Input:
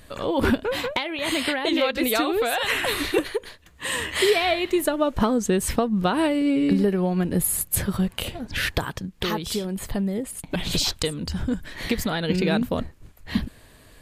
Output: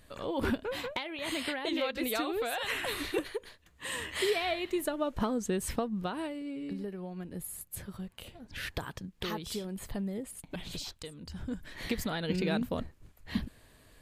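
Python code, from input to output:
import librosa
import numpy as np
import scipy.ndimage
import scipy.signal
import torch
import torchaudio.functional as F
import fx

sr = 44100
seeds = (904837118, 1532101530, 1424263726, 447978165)

y = fx.gain(x, sr, db=fx.line((5.82, -10.0), (6.45, -18.0), (8.24, -18.0), (8.94, -10.0), (10.33, -10.0), (10.99, -19.5), (11.72, -8.5)))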